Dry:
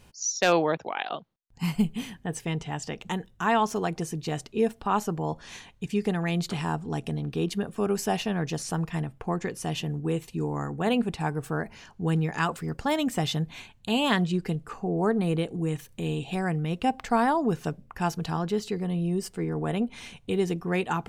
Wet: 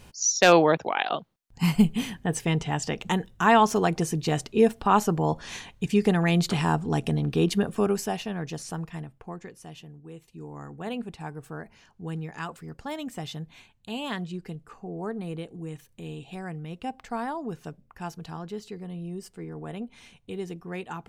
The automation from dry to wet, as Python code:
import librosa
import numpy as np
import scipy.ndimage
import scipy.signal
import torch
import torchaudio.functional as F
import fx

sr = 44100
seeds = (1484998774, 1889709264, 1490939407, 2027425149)

y = fx.gain(x, sr, db=fx.line((7.74, 5.0), (8.16, -4.0), (8.69, -4.0), (10.06, -16.5), (10.68, -8.5)))